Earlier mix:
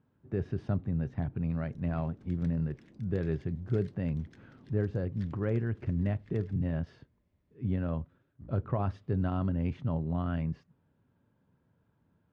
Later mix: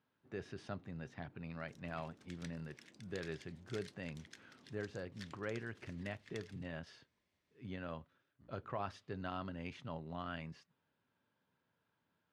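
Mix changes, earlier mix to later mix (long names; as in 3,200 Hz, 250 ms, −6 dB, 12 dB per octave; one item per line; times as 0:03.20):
speech −4.0 dB
master: add spectral tilt +4.5 dB per octave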